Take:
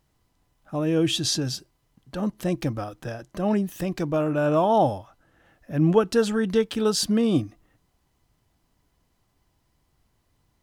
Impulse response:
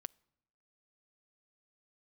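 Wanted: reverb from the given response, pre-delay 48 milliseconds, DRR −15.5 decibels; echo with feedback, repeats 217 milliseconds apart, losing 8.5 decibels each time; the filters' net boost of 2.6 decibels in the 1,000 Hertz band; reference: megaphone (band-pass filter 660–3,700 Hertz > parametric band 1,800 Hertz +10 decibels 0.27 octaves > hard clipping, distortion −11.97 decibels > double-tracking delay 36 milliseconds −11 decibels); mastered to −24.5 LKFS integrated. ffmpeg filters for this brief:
-filter_complex "[0:a]equalizer=frequency=1000:width_type=o:gain=5,aecho=1:1:217|434|651|868:0.376|0.143|0.0543|0.0206,asplit=2[link_01][link_02];[1:a]atrim=start_sample=2205,adelay=48[link_03];[link_02][link_03]afir=irnorm=-1:irlink=0,volume=20.5dB[link_04];[link_01][link_04]amix=inputs=2:normalize=0,highpass=660,lowpass=3700,equalizer=frequency=1800:width_type=o:width=0.27:gain=10,asoftclip=type=hard:threshold=-3.5dB,asplit=2[link_05][link_06];[link_06]adelay=36,volume=-11dB[link_07];[link_05][link_07]amix=inputs=2:normalize=0,volume=-11dB"

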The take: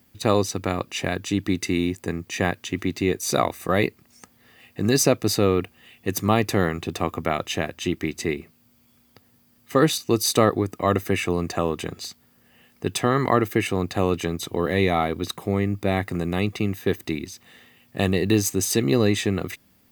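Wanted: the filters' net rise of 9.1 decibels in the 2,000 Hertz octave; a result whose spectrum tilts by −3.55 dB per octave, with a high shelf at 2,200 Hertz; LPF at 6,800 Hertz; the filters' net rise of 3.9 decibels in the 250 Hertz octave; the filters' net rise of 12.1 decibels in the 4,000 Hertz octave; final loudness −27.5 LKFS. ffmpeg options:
ffmpeg -i in.wav -af "lowpass=6800,equalizer=frequency=250:width_type=o:gain=5,equalizer=frequency=2000:width_type=o:gain=5.5,highshelf=frequency=2200:gain=5.5,equalizer=frequency=4000:width_type=o:gain=8.5,volume=-9dB" out.wav

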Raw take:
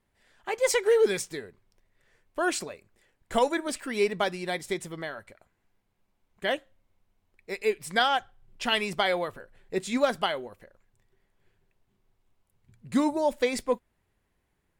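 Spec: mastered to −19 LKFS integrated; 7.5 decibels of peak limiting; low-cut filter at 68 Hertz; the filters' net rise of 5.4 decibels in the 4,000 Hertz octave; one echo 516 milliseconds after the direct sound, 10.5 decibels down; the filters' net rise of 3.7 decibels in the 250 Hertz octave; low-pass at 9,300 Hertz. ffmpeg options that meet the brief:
ffmpeg -i in.wav -af "highpass=68,lowpass=9300,equalizer=frequency=250:width_type=o:gain=4.5,equalizer=frequency=4000:width_type=o:gain=7.5,alimiter=limit=-17dB:level=0:latency=1,aecho=1:1:516:0.299,volume=10.5dB" out.wav

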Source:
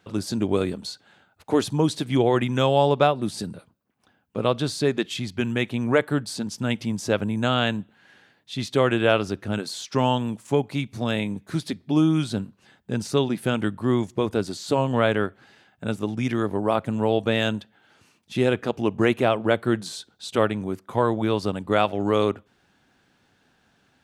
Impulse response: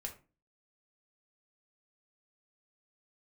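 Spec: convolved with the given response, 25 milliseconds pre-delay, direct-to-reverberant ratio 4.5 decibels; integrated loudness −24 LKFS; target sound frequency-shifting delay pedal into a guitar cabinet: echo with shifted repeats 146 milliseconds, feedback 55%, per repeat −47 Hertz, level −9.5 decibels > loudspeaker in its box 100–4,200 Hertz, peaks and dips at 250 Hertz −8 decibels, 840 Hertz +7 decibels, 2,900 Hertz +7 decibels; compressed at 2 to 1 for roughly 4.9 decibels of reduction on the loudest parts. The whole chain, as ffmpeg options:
-filter_complex "[0:a]acompressor=threshold=-23dB:ratio=2,asplit=2[link_01][link_02];[1:a]atrim=start_sample=2205,adelay=25[link_03];[link_02][link_03]afir=irnorm=-1:irlink=0,volume=-2.5dB[link_04];[link_01][link_04]amix=inputs=2:normalize=0,asplit=7[link_05][link_06][link_07][link_08][link_09][link_10][link_11];[link_06]adelay=146,afreqshift=-47,volume=-9.5dB[link_12];[link_07]adelay=292,afreqshift=-94,volume=-14.7dB[link_13];[link_08]adelay=438,afreqshift=-141,volume=-19.9dB[link_14];[link_09]adelay=584,afreqshift=-188,volume=-25.1dB[link_15];[link_10]adelay=730,afreqshift=-235,volume=-30.3dB[link_16];[link_11]adelay=876,afreqshift=-282,volume=-35.5dB[link_17];[link_05][link_12][link_13][link_14][link_15][link_16][link_17]amix=inputs=7:normalize=0,highpass=100,equalizer=frequency=250:width_type=q:width=4:gain=-8,equalizer=frequency=840:width_type=q:width=4:gain=7,equalizer=frequency=2900:width_type=q:width=4:gain=7,lowpass=frequency=4200:width=0.5412,lowpass=frequency=4200:width=1.3066,volume=2.5dB"

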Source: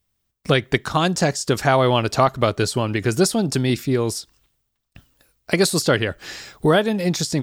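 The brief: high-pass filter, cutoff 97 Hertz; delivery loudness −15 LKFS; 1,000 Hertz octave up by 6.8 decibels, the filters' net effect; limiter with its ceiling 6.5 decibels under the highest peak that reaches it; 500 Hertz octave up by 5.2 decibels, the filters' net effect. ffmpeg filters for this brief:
ffmpeg -i in.wav -af "highpass=97,equalizer=frequency=500:width_type=o:gain=4.5,equalizer=frequency=1000:width_type=o:gain=7.5,volume=3dB,alimiter=limit=-0.5dB:level=0:latency=1" out.wav

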